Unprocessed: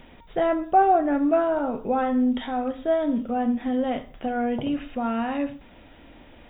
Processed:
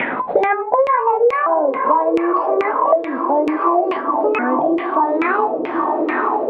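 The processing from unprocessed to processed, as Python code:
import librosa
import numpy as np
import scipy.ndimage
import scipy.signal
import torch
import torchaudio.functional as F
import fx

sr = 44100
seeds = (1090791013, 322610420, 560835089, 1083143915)

p1 = fx.pitch_ramps(x, sr, semitones=10.0, every_ms=1462)
p2 = scipy.signal.sosfilt(scipy.signal.butter(2, 250.0, 'highpass', fs=sr, output='sos'), p1)
p3 = p2 + fx.echo_diffused(p2, sr, ms=970, feedback_pct=53, wet_db=-9, dry=0)
p4 = fx.filter_lfo_lowpass(p3, sr, shape='saw_down', hz=2.3, low_hz=430.0, high_hz=2400.0, q=5.3)
p5 = fx.band_squash(p4, sr, depth_pct=100)
y = F.gain(torch.from_numpy(p5), 2.0).numpy()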